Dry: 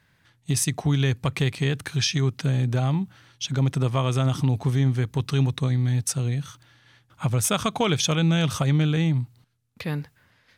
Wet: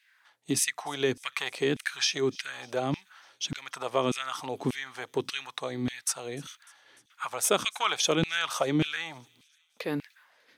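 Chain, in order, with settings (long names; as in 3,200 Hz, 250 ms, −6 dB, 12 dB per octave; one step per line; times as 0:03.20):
delay with a high-pass on its return 299 ms, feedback 60%, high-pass 3,500 Hz, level −23.5 dB
auto-filter high-pass saw down 1.7 Hz 230–2,700 Hz
level −2.5 dB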